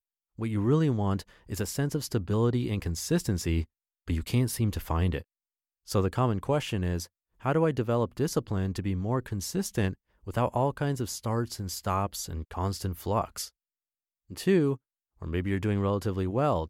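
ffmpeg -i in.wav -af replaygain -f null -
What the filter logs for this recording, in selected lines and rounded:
track_gain = +9.9 dB
track_peak = 0.144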